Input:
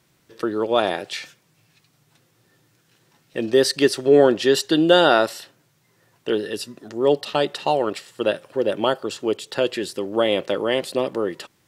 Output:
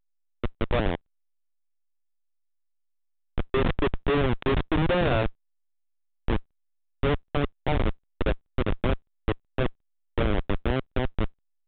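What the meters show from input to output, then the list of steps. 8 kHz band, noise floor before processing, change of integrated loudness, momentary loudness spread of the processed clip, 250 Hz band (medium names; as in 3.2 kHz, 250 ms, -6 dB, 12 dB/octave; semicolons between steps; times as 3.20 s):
under -40 dB, -64 dBFS, -7.5 dB, 9 LU, -6.0 dB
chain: bass shelf 100 Hz -9.5 dB; Schmitt trigger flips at -15 dBFS; trim +1 dB; A-law 64 kbps 8 kHz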